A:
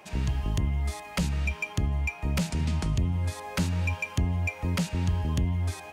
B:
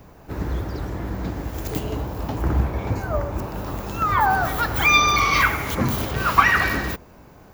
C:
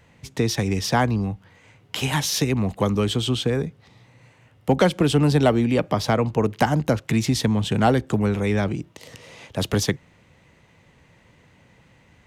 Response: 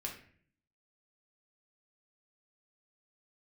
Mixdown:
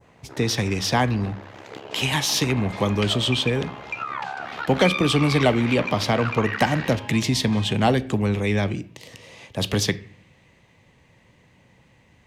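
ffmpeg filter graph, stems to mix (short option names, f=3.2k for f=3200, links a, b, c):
-filter_complex "[0:a]adelay=1850,volume=0dB[a];[1:a]tremolo=f=68:d=0.947,volume=-2dB[b];[2:a]equalizer=f=1.4k:w=7.6:g=-7.5,volume=-3.5dB,asplit=2[c][d];[d]volume=-8.5dB[e];[a][b]amix=inputs=2:normalize=0,highpass=410,lowpass=3.8k,acompressor=threshold=-29dB:ratio=5,volume=0dB[f];[3:a]atrim=start_sample=2205[g];[e][g]afir=irnorm=-1:irlink=0[h];[c][f][h]amix=inputs=3:normalize=0,adynamicequalizer=threshold=0.00891:dfrequency=3000:dqfactor=0.73:tfrequency=3000:tqfactor=0.73:attack=5:release=100:ratio=0.375:range=3:mode=boostabove:tftype=bell"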